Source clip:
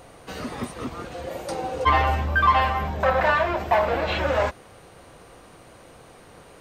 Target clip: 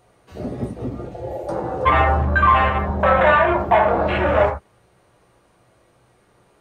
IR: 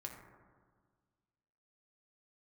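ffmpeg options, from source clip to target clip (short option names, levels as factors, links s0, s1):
-filter_complex "[0:a]acontrast=46,afwtdn=0.0891[s0];[1:a]atrim=start_sample=2205,atrim=end_sample=3969[s1];[s0][s1]afir=irnorm=-1:irlink=0,volume=1.68"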